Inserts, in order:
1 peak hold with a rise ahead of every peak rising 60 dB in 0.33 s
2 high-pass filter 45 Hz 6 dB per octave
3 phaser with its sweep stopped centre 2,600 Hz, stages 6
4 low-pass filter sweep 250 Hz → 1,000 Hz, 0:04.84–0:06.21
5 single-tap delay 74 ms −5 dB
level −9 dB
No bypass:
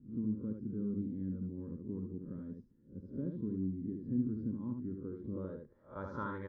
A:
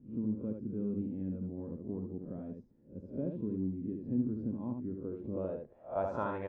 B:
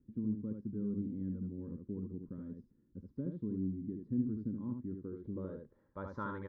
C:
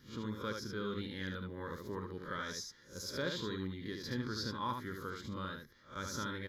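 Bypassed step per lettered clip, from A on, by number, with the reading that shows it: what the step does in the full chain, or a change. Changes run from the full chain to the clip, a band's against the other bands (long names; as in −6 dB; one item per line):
3, change in integrated loudness +2.0 LU
1, change in momentary loudness spread +2 LU
4, change in momentary loudness spread −3 LU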